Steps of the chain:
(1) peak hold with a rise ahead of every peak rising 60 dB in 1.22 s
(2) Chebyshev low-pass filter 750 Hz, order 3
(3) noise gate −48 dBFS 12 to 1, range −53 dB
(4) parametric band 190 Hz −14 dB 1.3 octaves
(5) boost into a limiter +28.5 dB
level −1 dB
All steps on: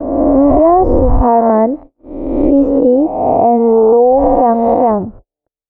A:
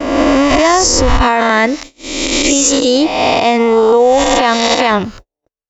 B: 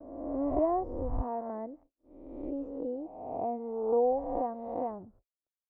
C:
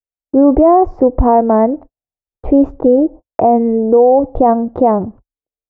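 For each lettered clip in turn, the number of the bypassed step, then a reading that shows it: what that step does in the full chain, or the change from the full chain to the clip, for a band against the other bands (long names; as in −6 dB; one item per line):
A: 2, 1 kHz band +2.0 dB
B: 5, change in crest factor +7.0 dB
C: 1, 125 Hz band −3.0 dB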